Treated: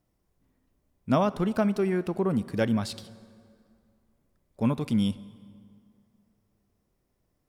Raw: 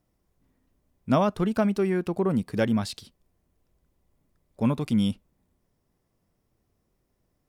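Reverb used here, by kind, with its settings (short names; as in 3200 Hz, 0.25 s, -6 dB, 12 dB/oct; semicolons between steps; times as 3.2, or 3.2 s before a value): plate-style reverb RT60 2.3 s, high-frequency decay 0.7×, DRR 16.5 dB; gain -1.5 dB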